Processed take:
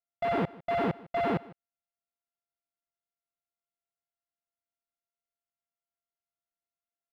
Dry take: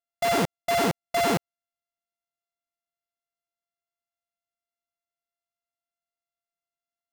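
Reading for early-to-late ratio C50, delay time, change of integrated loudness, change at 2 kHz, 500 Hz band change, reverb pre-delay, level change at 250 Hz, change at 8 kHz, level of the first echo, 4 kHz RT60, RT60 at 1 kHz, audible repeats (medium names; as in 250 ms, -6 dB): no reverb, 153 ms, -5.5 dB, -8.0 dB, -4.5 dB, no reverb, -3.5 dB, under -30 dB, -21.0 dB, no reverb, no reverb, 1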